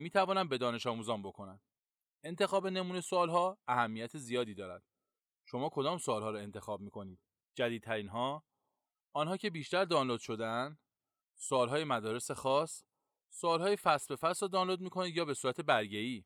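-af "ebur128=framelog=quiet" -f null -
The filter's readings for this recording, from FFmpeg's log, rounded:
Integrated loudness:
  I:         -35.3 LUFS
  Threshold: -45.9 LUFS
Loudness range:
  LRA:         5.5 LU
  Threshold: -56.6 LUFS
  LRA low:   -40.0 LUFS
  LRA high:  -34.5 LUFS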